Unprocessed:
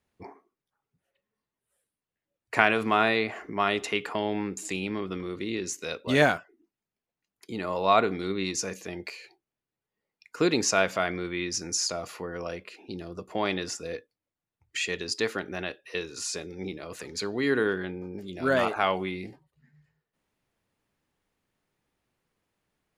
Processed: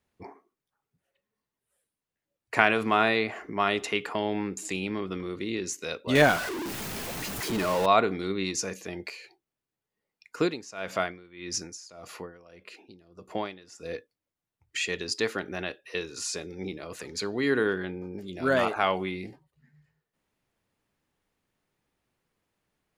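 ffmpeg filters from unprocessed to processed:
-filter_complex "[0:a]asettb=1/sr,asplit=3[s0][s1][s2];[s0]atrim=end=6.154[s3];[s1]atrim=start=6.15:end=7.86,asetpts=PTS-STARTPTS,afade=t=in:d=0.004:c=qsin,afade=t=out:st=1.706:d=0.004:c=qsin,aeval=exprs='val(0)+0.5*0.0447*sgn(val(0))':c=same[s4];[s2]atrim=start=7.856[s5];[s3][s4]acrossfade=d=0.004:c1=hsin:c2=qsin[s6];[s6][s5]acrossfade=d=0.004:c1=qsin:c2=hsin,asettb=1/sr,asplit=3[s7][s8][s9];[s7]atrim=end=10.394[s10];[s8]atrim=start=10.39:end=13.95,asetpts=PTS-STARTPTS,afade=t=in:d=0.004:c=qsin,afade=t=out:st=3.556:d=0.004:c=qsin,aeval=exprs='val(0)*pow(10,-20*(0.5-0.5*cos(2*PI*1.7*n/s))/20)':c=same[s11];[s9]atrim=start=13.946[s12];[s10][s11]acrossfade=d=0.004:c1=hsin:c2=qsin[s13];[s13][s12]acrossfade=d=0.004:c1=qsin:c2=hsin"

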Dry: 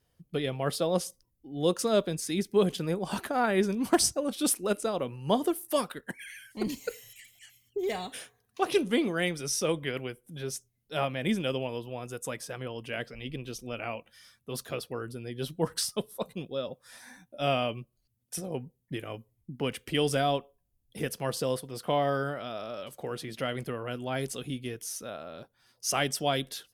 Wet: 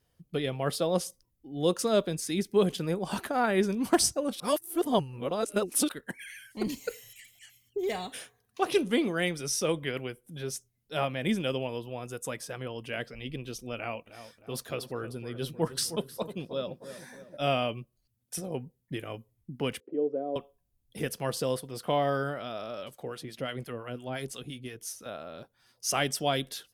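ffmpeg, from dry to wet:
-filter_complex "[0:a]asettb=1/sr,asplit=3[s0][s1][s2];[s0]atrim=end=13.764[s3];[s1]atrim=start=13.76:end=17.37,asetpts=PTS-STARTPTS,afade=t=in:d=0.004:c=qsin,afade=t=out:st=3.606:d=0.004:c=qsin,asplit=2[s4][s5];[s5]adelay=310,lowpass=f=1400:p=1,volume=0.282,asplit=2[s6][s7];[s7]adelay=310,lowpass=f=1400:p=1,volume=0.53,asplit=2[s8][s9];[s9]adelay=310,lowpass=f=1400:p=1,volume=0.53,asplit=2[s10][s11];[s11]adelay=310,lowpass=f=1400:p=1,volume=0.53,asplit=2[s12][s13];[s13]adelay=310,lowpass=f=1400:p=1,volume=0.53,asplit=2[s14][s15];[s15]adelay=310,lowpass=f=1400:p=1,volume=0.53[s16];[s4][s6][s8][s10][s12][s14][s16]amix=inputs=7:normalize=0,atrim=end_sample=159201[s17];[s2]atrim=start=17.366[s18];[s3][s17]acrossfade=d=0.004:c1=hsin:c2=qsin[s19];[s19][s18]acrossfade=d=0.004:c1=qsin:c2=hsin,asettb=1/sr,asplit=3[s20][s21][s22];[s20]atrim=end=19.804[s23];[s21]atrim=start=19.8:end=20.36,asetpts=PTS-STARTPTS,afade=t=in:d=0.004:c=qsin,afade=t=out:st=0.556:d=0.004:c=qsin,asuperpass=centerf=400:order=4:qfactor=1.5[s24];[s22]atrim=start=20.356[s25];[s23][s24]acrossfade=d=0.004:c1=hsin:c2=qsin[s26];[s26][s25]acrossfade=d=0.004:c1=qsin:c2=hsin,asettb=1/sr,asplit=3[s27][s28][s29];[s27]atrim=end=22.904[s30];[s28]atrim=start=22.9:end=25.06,asetpts=PTS-STARTPTS,afade=t=in:d=0.004:c=qsin,afade=t=out:st=2.156:d=0.004:c=qsin,acrossover=split=770[s31][s32];[s31]aeval=exprs='val(0)*(1-0.7/2+0.7/2*cos(2*PI*5.8*n/s))':c=same[s33];[s32]aeval=exprs='val(0)*(1-0.7/2-0.7/2*cos(2*PI*5.8*n/s))':c=same[s34];[s33][s34]amix=inputs=2:normalize=0[s35];[s29]atrim=start=25.056[s36];[s30][s35]acrossfade=d=0.004:c1=hsin:c2=qsin[s37];[s37][s36]acrossfade=d=0.004:c1=qsin:c2=hsin,asplit=3[s38][s39][s40];[s38]atrim=end=4.402[s41];[s39]atrim=start=4.398:end=5.892,asetpts=PTS-STARTPTS,areverse[s42];[s40]atrim=start=5.888[s43];[s41][s42]acrossfade=d=0.004:c1=hsin:c2=hsin[s44];[s44][s43]acrossfade=d=0.004:c1=hsin:c2=hsin"

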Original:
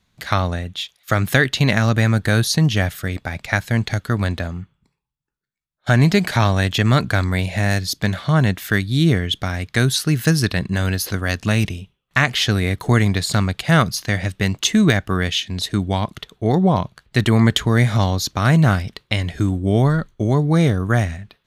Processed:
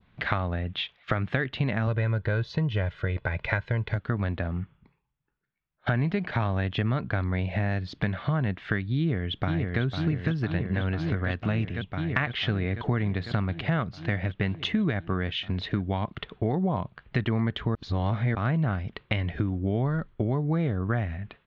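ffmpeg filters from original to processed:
-filter_complex "[0:a]asettb=1/sr,asplit=3[s0][s1][s2];[s0]atrim=end=1.874[s3];[s1]atrim=start=1.87:end=3.96,asetpts=PTS-STARTPTS,afade=t=in:d=0.004:c=qsin,afade=t=out:st=2.086:d=0.004:c=qsin,aecho=1:1:2:0.65,atrim=end_sample=92169[s4];[s2]atrim=start=3.956[s5];[s3][s4]acrossfade=d=0.004:c1=hsin:c2=qsin[s6];[s6][s5]acrossfade=d=0.004:c1=qsin:c2=hsin,asplit=2[s7][s8];[s8]afade=t=in:st=8.97:d=0.01,afade=t=out:st=9.81:d=0.01,aecho=0:1:500|1000|1500|2000|2500|3000|3500|4000|4500|5000|5500|6000:0.530884|0.424708|0.339766|0.271813|0.21745|0.17396|0.139168|0.111335|0.0890676|0.0712541|0.0570033|0.0456026[s9];[s7][s9]amix=inputs=2:normalize=0,asplit=3[s10][s11][s12];[s10]atrim=end=17.752[s13];[s11]atrim=start=17.748:end=18.352,asetpts=PTS-STARTPTS,areverse[s14];[s12]atrim=start=18.348[s15];[s13][s14]acrossfade=d=0.004:c1=hsin:c2=hsin[s16];[s16][s15]acrossfade=d=0.004:c1=hsin:c2=hsin,lowpass=f=2900:w=0.5412,lowpass=f=2900:w=1.3066,adynamicequalizer=threshold=0.0178:dfrequency=2100:dqfactor=1:tfrequency=2100:tqfactor=1:attack=5:release=100:ratio=0.375:range=2:mode=cutabove:tftype=bell,acompressor=threshold=0.0282:ratio=4,volume=1.68"

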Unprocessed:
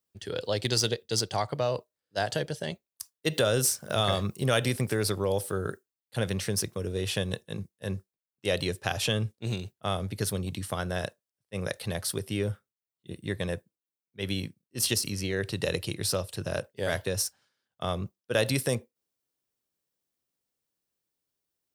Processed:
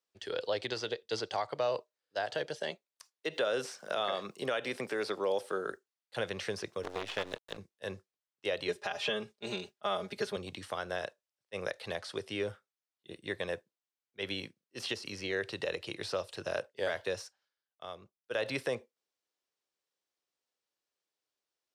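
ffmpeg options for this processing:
-filter_complex "[0:a]asettb=1/sr,asplit=3[s0][s1][s2];[s0]atrim=end=2.594[s3];[s1]atrim=start=2.59:end=5.72,asetpts=PTS-STARTPTS,afade=t=in:d=0.004:c=qsin,afade=t=out:st=3.126:d=0.004:c=qsin,highpass=f=150:w=0.5412,highpass=f=150:w=1.3066[s4];[s2]atrim=start=5.716[s5];[s3][s4]acrossfade=d=0.004:c1=hsin:c2=qsin[s6];[s6][s5]acrossfade=d=0.004:c1=qsin:c2=hsin,asettb=1/sr,asplit=3[s7][s8][s9];[s7]atrim=end=6.834[s10];[s8]atrim=start=6.83:end=7.57,asetpts=PTS-STARTPTS,afade=t=in:d=0.004:c=qsin,afade=t=out:st=0.736:d=0.004:c=qsin,acrusher=bits=5:dc=4:mix=0:aa=0.000001[s11];[s9]atrim=start=7.566[s12];[s10][s11]acrossfade=d=0.004:c1=hsin:c2=qsin[s13];[s13][s12]acrossfade=d=0.004:c1=qsin:c2=hsin,asettb=1/sr,asplit=3[s14][s15][s16];[s14]atrim=end=8.684[s17];[s15]atrim=start=8.68:end=10.36,asetpts=PTS-STARTPTS,afade=t=in:d=0.004:c=qsin,afade=t=out:st=1.676:d=0.004:c=qsin,aecho=1:1:4.9:0.9,atrim=end_sample=74088[s18];[s16]atrim=start=10.356[s19];[s17][s18]acrossfade=d=0.004:c1=hsin:c2=qsin[s20];[s20][s19]acrossfade=d=0.004:c1=qsin:c2=hsin,asettb=1/sr,asplit=3[s21][s22][s23];[s21]atrim=end=11.984[s24];[s22]atrim=start=11.98:end=12.48,asetpts=PTS-STARTPTS,afade=t=in:d=0.004:c=qsin,afade=t=out:st=0.496:d=0.004:c=qsin,lowpass=9200[s25];[s23]atrim=start=12.476[s26];[s24][s25]acrossfade=d=0.004:c1=hsin:c2=qsin[s27];[s27][s26]acrossfade=d=0.004:c1=qsin:c2=hsin,asplit=3[s28][s29][s30];[s28]atrim=end=17.38,asetpts=PTS-STARTPTS,afade=t=out:st=17.1:d=0.28:silence=0.266073[s31];[s29]atrim=start=17.38:end=18.2,asetpts=PTS-STARTPTS,volume=0.266[s32];[s30]atrim=start=18.2,asetpts=PTS-STARTPTS,afade=t=in:d=0.28:silence=0.266073[s33];[s31][s32][s33]concat=n=3:v=0:a=1,acrossover=split=3300[s34][s35];[s35]acompressor=threshold=0.00794:ratio=4:attack=1:release=60[s36];[s34][s36]amix=inputs=2:normalize=0,acrossover=split=350 7300:gain=0.158 1 0.141[s37][s38][s39];[s37][s38][s39]amix=inputs=3:normalize=0,alimiter=limit=0.0794:level=0:latency=1:release=201"

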